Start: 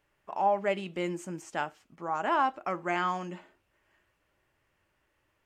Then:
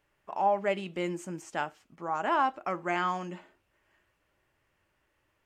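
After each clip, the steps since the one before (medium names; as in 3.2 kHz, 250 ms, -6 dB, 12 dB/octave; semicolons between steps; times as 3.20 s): no audible change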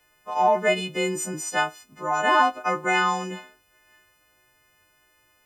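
partials quantised in pitch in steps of 3 st; trim +6.5 dB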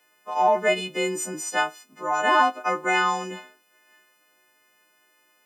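high-pass 200 Hz 24 dB/octave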